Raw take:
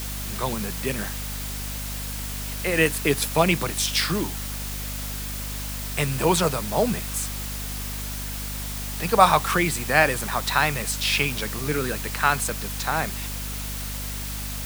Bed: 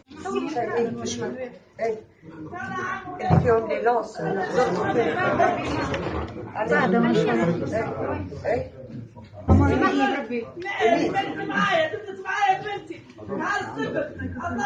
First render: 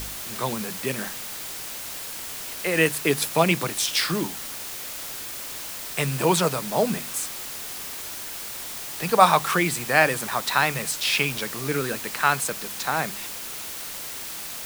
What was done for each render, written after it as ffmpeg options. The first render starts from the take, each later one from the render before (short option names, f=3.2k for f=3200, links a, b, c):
-af "bandreject=f=50:t=h:w=4,bandreject=f=100:t=h:w=4,bandreject=f=150:t=h:w=4,bandreject=f=200:t=h:w=4,bandreject=f=250:t=h:w=4"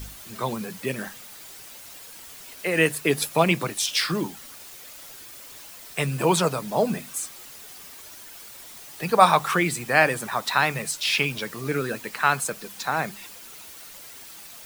-af "afftdn=nr=10:nf=-35"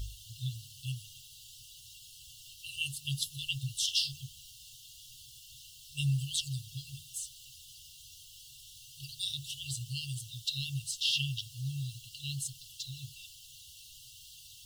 -af "afftfilt=real='re*(1-between(b*sr/4096,140,2700))':imag='im*(1-between(b*sr/4096,140,2700))':win_size=4096:overlap=0.75,aemphasis=mode=reproduction:type=50kf"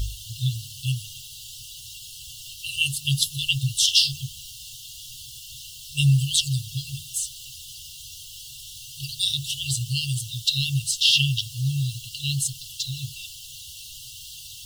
-af "volume=12dB"